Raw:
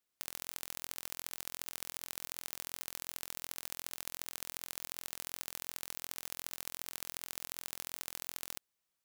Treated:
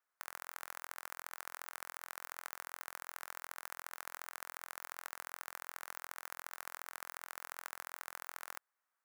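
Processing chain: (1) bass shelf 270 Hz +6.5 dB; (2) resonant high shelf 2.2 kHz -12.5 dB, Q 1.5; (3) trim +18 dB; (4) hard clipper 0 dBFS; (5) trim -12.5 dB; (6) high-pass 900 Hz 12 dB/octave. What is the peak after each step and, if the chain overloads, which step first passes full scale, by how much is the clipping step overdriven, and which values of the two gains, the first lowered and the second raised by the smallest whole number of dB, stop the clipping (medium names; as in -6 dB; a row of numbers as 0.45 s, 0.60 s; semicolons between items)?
-11.5 dBFS, -23.0 dBFS, -5.0 dBFS, -5.0 dBFS, -17.5 dBFS, -18.5 dBFS; nothing clips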